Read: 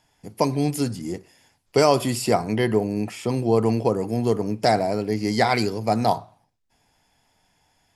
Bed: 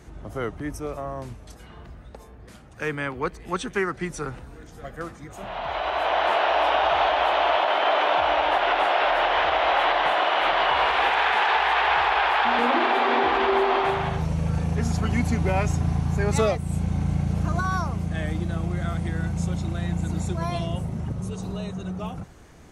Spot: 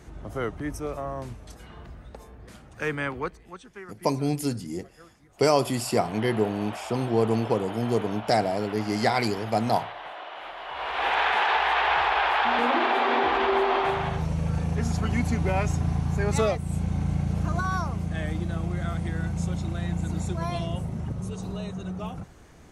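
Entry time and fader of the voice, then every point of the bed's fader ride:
3.65 s, -3.5 dB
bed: 3.16 s -0.5 dB
3.61 s -17.5 dB
10.62 s -17.5 dB
11.13 s -2 dB

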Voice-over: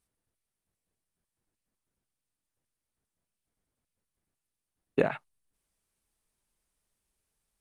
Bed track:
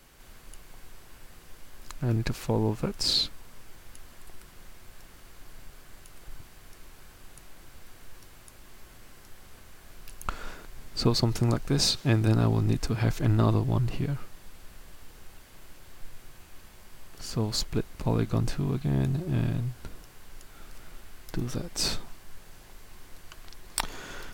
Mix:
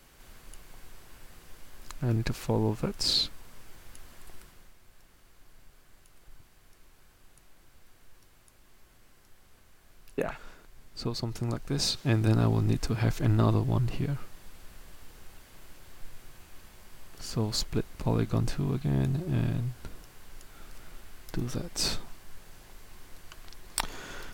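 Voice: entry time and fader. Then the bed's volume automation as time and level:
5.20 s, -5.5 dB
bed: 4.39 s -1 dB
4.76 s -9 dB
11.16 s -9 dB
12.28 s -1 dB

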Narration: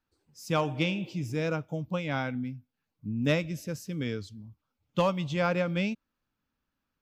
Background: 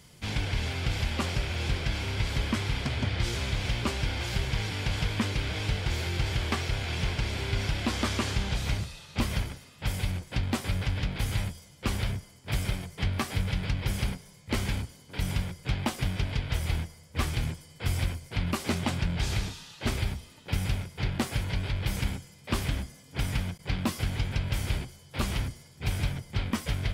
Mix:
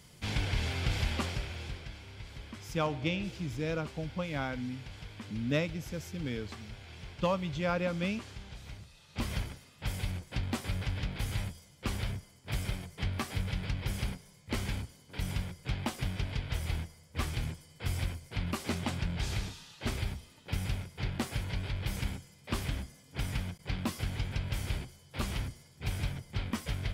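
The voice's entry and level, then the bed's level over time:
2.25 s, -4.0 dB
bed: 1.11 s -2 dB
2.02 s -17 dB
8.80 s -17 dB
9.28 s -5 dB

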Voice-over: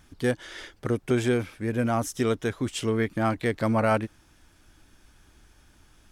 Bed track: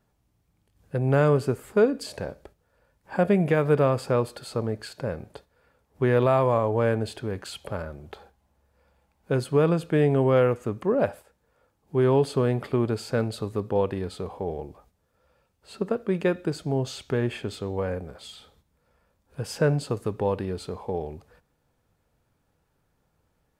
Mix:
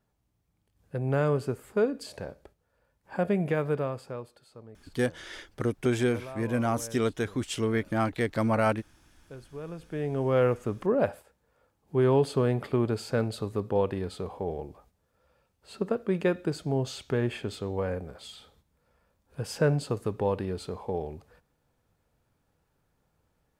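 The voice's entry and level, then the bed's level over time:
4.75 s, -2.0 dB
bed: 3.60 s -5.5 dB
4.50 s -20.5 dB
9.55 s -20.5 dB
10.46 s -2 dB

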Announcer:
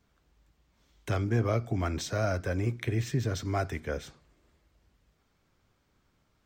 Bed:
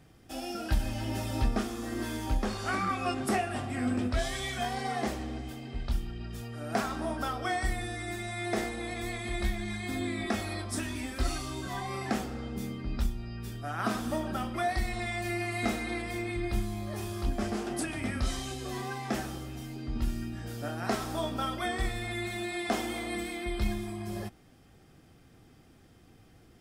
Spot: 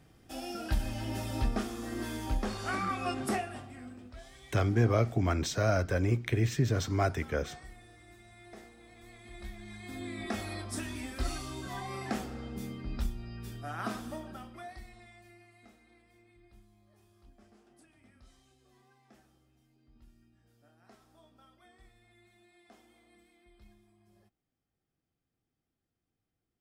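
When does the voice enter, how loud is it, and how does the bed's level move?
3.45 s, +1.5 dB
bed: 3.31 s -2.5 dB
3.97 s -19.5 dB
8.92 s -19.5 dB
10.40 s -3.5 dB
13.73 s -3.5 dB
15.68 s -29 dB

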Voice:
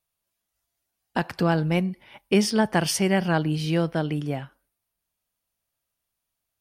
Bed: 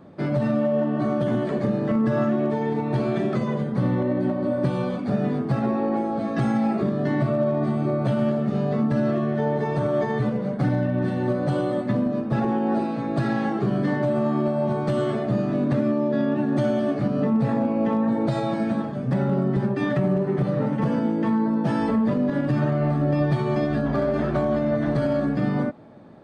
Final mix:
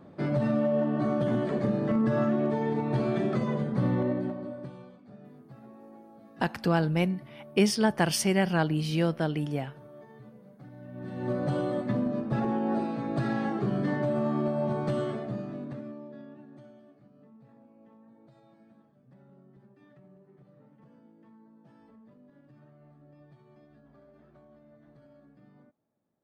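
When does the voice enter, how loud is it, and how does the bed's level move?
5.25 s, -3.0 dB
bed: 4.07 s -4 dB
4.99 s -26.5 dB
10.72 s -26.5 dB
11.34 s -5.5 dB
14.91 s -5.5 dB
17.00 s -34.5 dB

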